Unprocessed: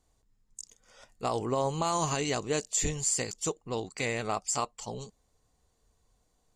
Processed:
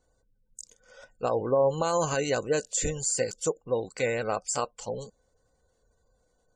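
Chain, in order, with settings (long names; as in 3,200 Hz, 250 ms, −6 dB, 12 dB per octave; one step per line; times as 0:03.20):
tape wow and flutter 21 cents
hollow resonant body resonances 520/1,500 Hz, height 13 dB, ringing for 45 ms
gate on every frequency bin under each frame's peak −30 dB strong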